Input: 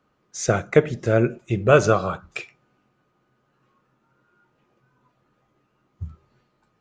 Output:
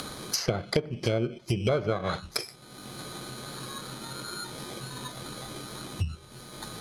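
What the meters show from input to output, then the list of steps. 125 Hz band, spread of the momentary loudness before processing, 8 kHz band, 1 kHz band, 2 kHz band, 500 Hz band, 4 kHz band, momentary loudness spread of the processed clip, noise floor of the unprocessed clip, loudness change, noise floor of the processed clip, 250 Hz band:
−6.0 dB, 22 LU, −1.5 dB, −9.0 dB, −9.5 dB, −10.0 dB, +6.5 dB, 13 LU, −69 dBFS, −12.0 dB, −50 dBFS, −6.5 dB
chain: samples in bit-reversed order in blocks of 16 samples
upward compression, threshold −19 dBFS
parametric band 5,100 Hz +9.5 dB 2.1 octaves
treble cut that deepens with the level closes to 1,400 Hz, closed at −14 dBFS
downward compressor 6 to 1, threshold −23 dBFS, peak gain reduction 13.5 dB

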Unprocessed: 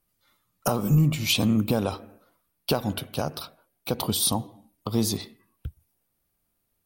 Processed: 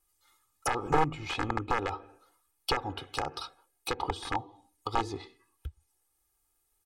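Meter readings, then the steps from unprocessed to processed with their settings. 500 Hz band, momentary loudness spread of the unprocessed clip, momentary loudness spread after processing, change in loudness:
−5.0 dB, 21 LU, 17 LU, −7.5 dB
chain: wrap-around overflow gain 13.5 dB
comb filter 2.4 ms, depth 84%
treble cut that deepens with the level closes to 1,700 Hz, closed at −22.5 dBFS
octave-band graphic EQ 125/500/1,000/8,000 Hz −9/−4/+5/+10 dB
level −5 dB

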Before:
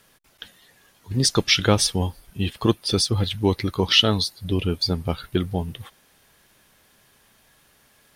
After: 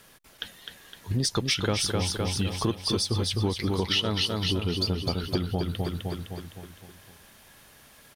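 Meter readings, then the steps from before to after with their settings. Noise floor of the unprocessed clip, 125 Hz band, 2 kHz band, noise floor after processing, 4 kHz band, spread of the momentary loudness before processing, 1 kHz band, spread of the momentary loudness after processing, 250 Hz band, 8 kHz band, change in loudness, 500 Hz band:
−59 dBFS, −3.5 dB, −6.0 dB, −55 dBFS, −5.5 dB, 12 LU, −5.0 dB, 15 LU, −5.0 dB, −5.5 dB, −5.5 dB, −5.5 dB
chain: repeating echo 256 ms, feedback 51%, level −6 dB
in parallel at −6 dB: soft clipping −13.5 dBFS, distortion −13 dB
on the sum: downward compressor 4 to 1, threshold −25 dBFS, peak gain reduction 14 dB

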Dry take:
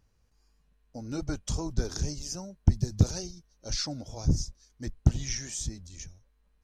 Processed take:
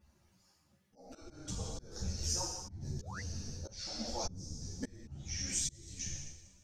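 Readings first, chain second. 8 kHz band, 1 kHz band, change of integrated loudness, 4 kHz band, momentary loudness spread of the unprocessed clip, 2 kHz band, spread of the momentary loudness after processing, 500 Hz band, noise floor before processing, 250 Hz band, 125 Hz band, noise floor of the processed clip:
−1.5 dB, −1.5 dB, −8.5 dB, −3.5 dB, 16 LU, −4.0 dB, 13 LU, −7.5 dB, −68 dBFS, −12.0 dB, −14.0 dB, −72 dBFS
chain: harmonic-percussive split with one part muted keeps percussive
coupled-rooms reverb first 0.8 s, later 2 s, from −18 dB, DRR −3 dB
downward compressor 2.5 to 1, threshold −38 dBFS, peak gain reduction 16.5 dB
sound drawn into the spectrogram rise, 0:03.00–0:03.21, 370–2,200 Hz −40 dBFS
volume swells 556 ms
string-ensemble chorus
level +8 dB

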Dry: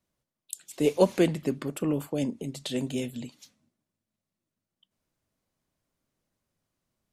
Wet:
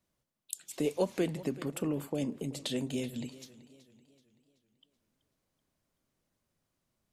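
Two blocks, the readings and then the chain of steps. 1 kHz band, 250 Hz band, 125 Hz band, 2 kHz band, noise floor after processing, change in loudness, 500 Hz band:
−7.5 dB, −5.5 dB, −5.5 dB, −5.5 dB, −83 dBFS, −7.0 dB, −7.0 dB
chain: downward compressor 2 to 1, threshold −33 dBFS, peak gain reduction 10 dB
feedback echo with a swinging delay time 381 ms, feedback 45%, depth 52 cents, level −18 dB

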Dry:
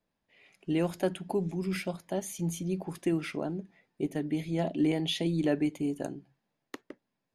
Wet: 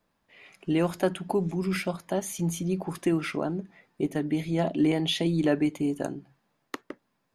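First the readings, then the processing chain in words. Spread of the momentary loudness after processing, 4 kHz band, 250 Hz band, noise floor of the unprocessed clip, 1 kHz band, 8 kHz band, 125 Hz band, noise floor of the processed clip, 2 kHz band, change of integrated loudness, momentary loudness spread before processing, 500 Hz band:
16 LU, +4.0 dB, +3.5 dB, −84 dBFS, +6.0 dB, +4.0 dB, +3.5 dB, −76 dBFS, +5.0 dB, +4.0 dB, 12 LU, +4.0 dB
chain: parametric band 1,200 Hz +6 dB 0.76 octaves
in parallel at −2.5 dB: downward compressor, threshold −43 dBFS, peak gain reduction 19.5 dB
on the sum: level +2.5 dB

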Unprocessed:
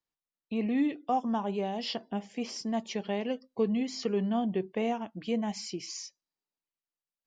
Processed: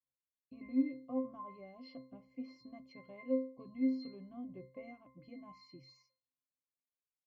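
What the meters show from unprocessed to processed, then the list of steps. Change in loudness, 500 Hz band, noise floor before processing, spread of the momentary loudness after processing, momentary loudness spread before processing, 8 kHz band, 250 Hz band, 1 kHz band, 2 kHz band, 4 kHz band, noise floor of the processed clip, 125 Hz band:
−7.5 dB, −11.5 dB, below −85 dBFS, 19 LU, 8 LU, can't be measured, −7.5 dB, −19.5 dB, −14.5 dB, −21.5 dB, below −85 dBFS, −19.0 dB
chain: tape wow and flutter 18 cents
resonances in every octave C, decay 0.4 s
level +6 dB

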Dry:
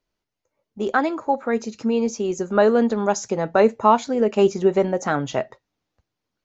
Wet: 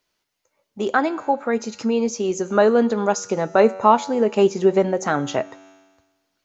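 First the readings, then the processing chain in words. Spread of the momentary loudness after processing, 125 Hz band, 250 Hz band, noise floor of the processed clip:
8 LU, 0.0 dB, +0.5 dB, −76 dBFS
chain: low-shelf EQ 62 Hz −10 dB
tuned comb filter 95 Hz, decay 1.3 s, harmonics all, mix 50%
one half of a high-frequency compander encoder only
level +6.5 dB

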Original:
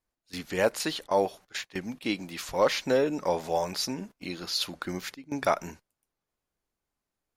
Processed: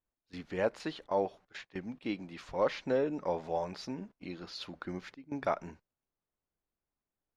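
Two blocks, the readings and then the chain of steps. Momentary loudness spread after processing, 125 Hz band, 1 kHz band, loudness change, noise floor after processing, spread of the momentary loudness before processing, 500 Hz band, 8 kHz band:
13 LU, −5.0 dB, −6.5 dB, −6.5 dB, below −85 dBFS, 12 LU, −5.5 dB, below −15 dB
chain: head-to-tape spacing loss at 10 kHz 23 dB
level −4.5 dB

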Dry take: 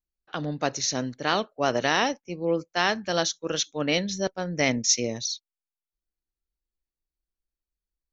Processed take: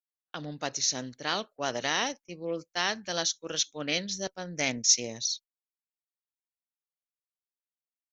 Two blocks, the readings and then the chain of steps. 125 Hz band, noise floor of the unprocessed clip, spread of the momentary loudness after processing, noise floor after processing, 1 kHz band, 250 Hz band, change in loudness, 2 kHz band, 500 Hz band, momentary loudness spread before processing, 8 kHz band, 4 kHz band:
−9.0 dB, below −85 dBFS, 12 LU, below −85 dBFS, −7.0 dB, −8.5 dB, −3.5 dB, −5.0 dB, −8.0 dB, 8 LU, can't be measured, −1.5 dB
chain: noise gate −43 dBFS, range −39 dB
high-shelf EQ 2,400 Hz +10 dB
highs frequency-modulated by the lows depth 0.11 ms
level −8.5 dB

